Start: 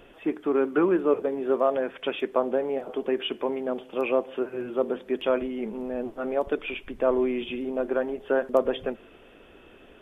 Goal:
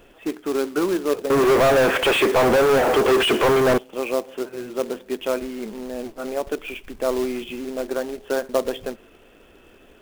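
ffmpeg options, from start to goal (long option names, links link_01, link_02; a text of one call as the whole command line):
ffmpeg -i in.wav -filter_complex "[0:a]lowshelf=frequency=65:gain=3.5,asettb=1/sr,asplit=3[link_01][link_02][link_03];[link_01]atrim=end=1.304[link_04];[link_02]atrim=start=1.3:end=3.78,asetpts=PTS-STARTPTS,afade=type=in:duration=0.004:curve=qsin,afade=type=out:start_time=2.476:duration=0.004:curve=qsin,asplit=2[link_05][link_06];[link_06]highpass=frequency=720:poles=1,volume=38dB,asoftclip=type=tanh:threshold=-9dB[link_07];[link_05][link_07]amix=inputs=2:normalize=0,lowpass=frequency=1900:poles=1,volume=-6dB[link_08];[link_03]atrim=start=3.776[link_09];[link_04][link_08]acrossfade=duration=0.004:curve1=hsin:curve2=qsin[link_10];[link_10][link_09]acrossfade=duration=0.004:curve1=qsin:curve2=hsin,acrusher=bits=3:mode=log:mix=0:aa=0.000001" out.wav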